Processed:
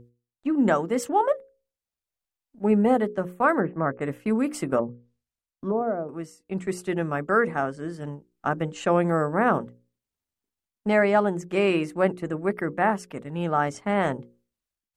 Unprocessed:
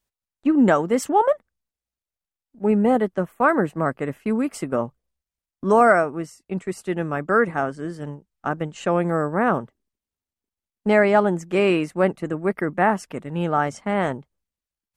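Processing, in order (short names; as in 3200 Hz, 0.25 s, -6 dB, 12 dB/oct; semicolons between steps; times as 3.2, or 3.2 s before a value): 3.6–4.01 steep low-pass 2200 Hz 36 dB/oct; buzz 120 Hz, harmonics 4, -39 dBFS -5 dB/oct; notches 60/120/180/240/300/360/420/480/540 Hz; AGC gain up to 10 dB; 4.78–6.09 treble ducked by the level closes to 520 Hz, closed at -13.5 dBFS; gain -8 dB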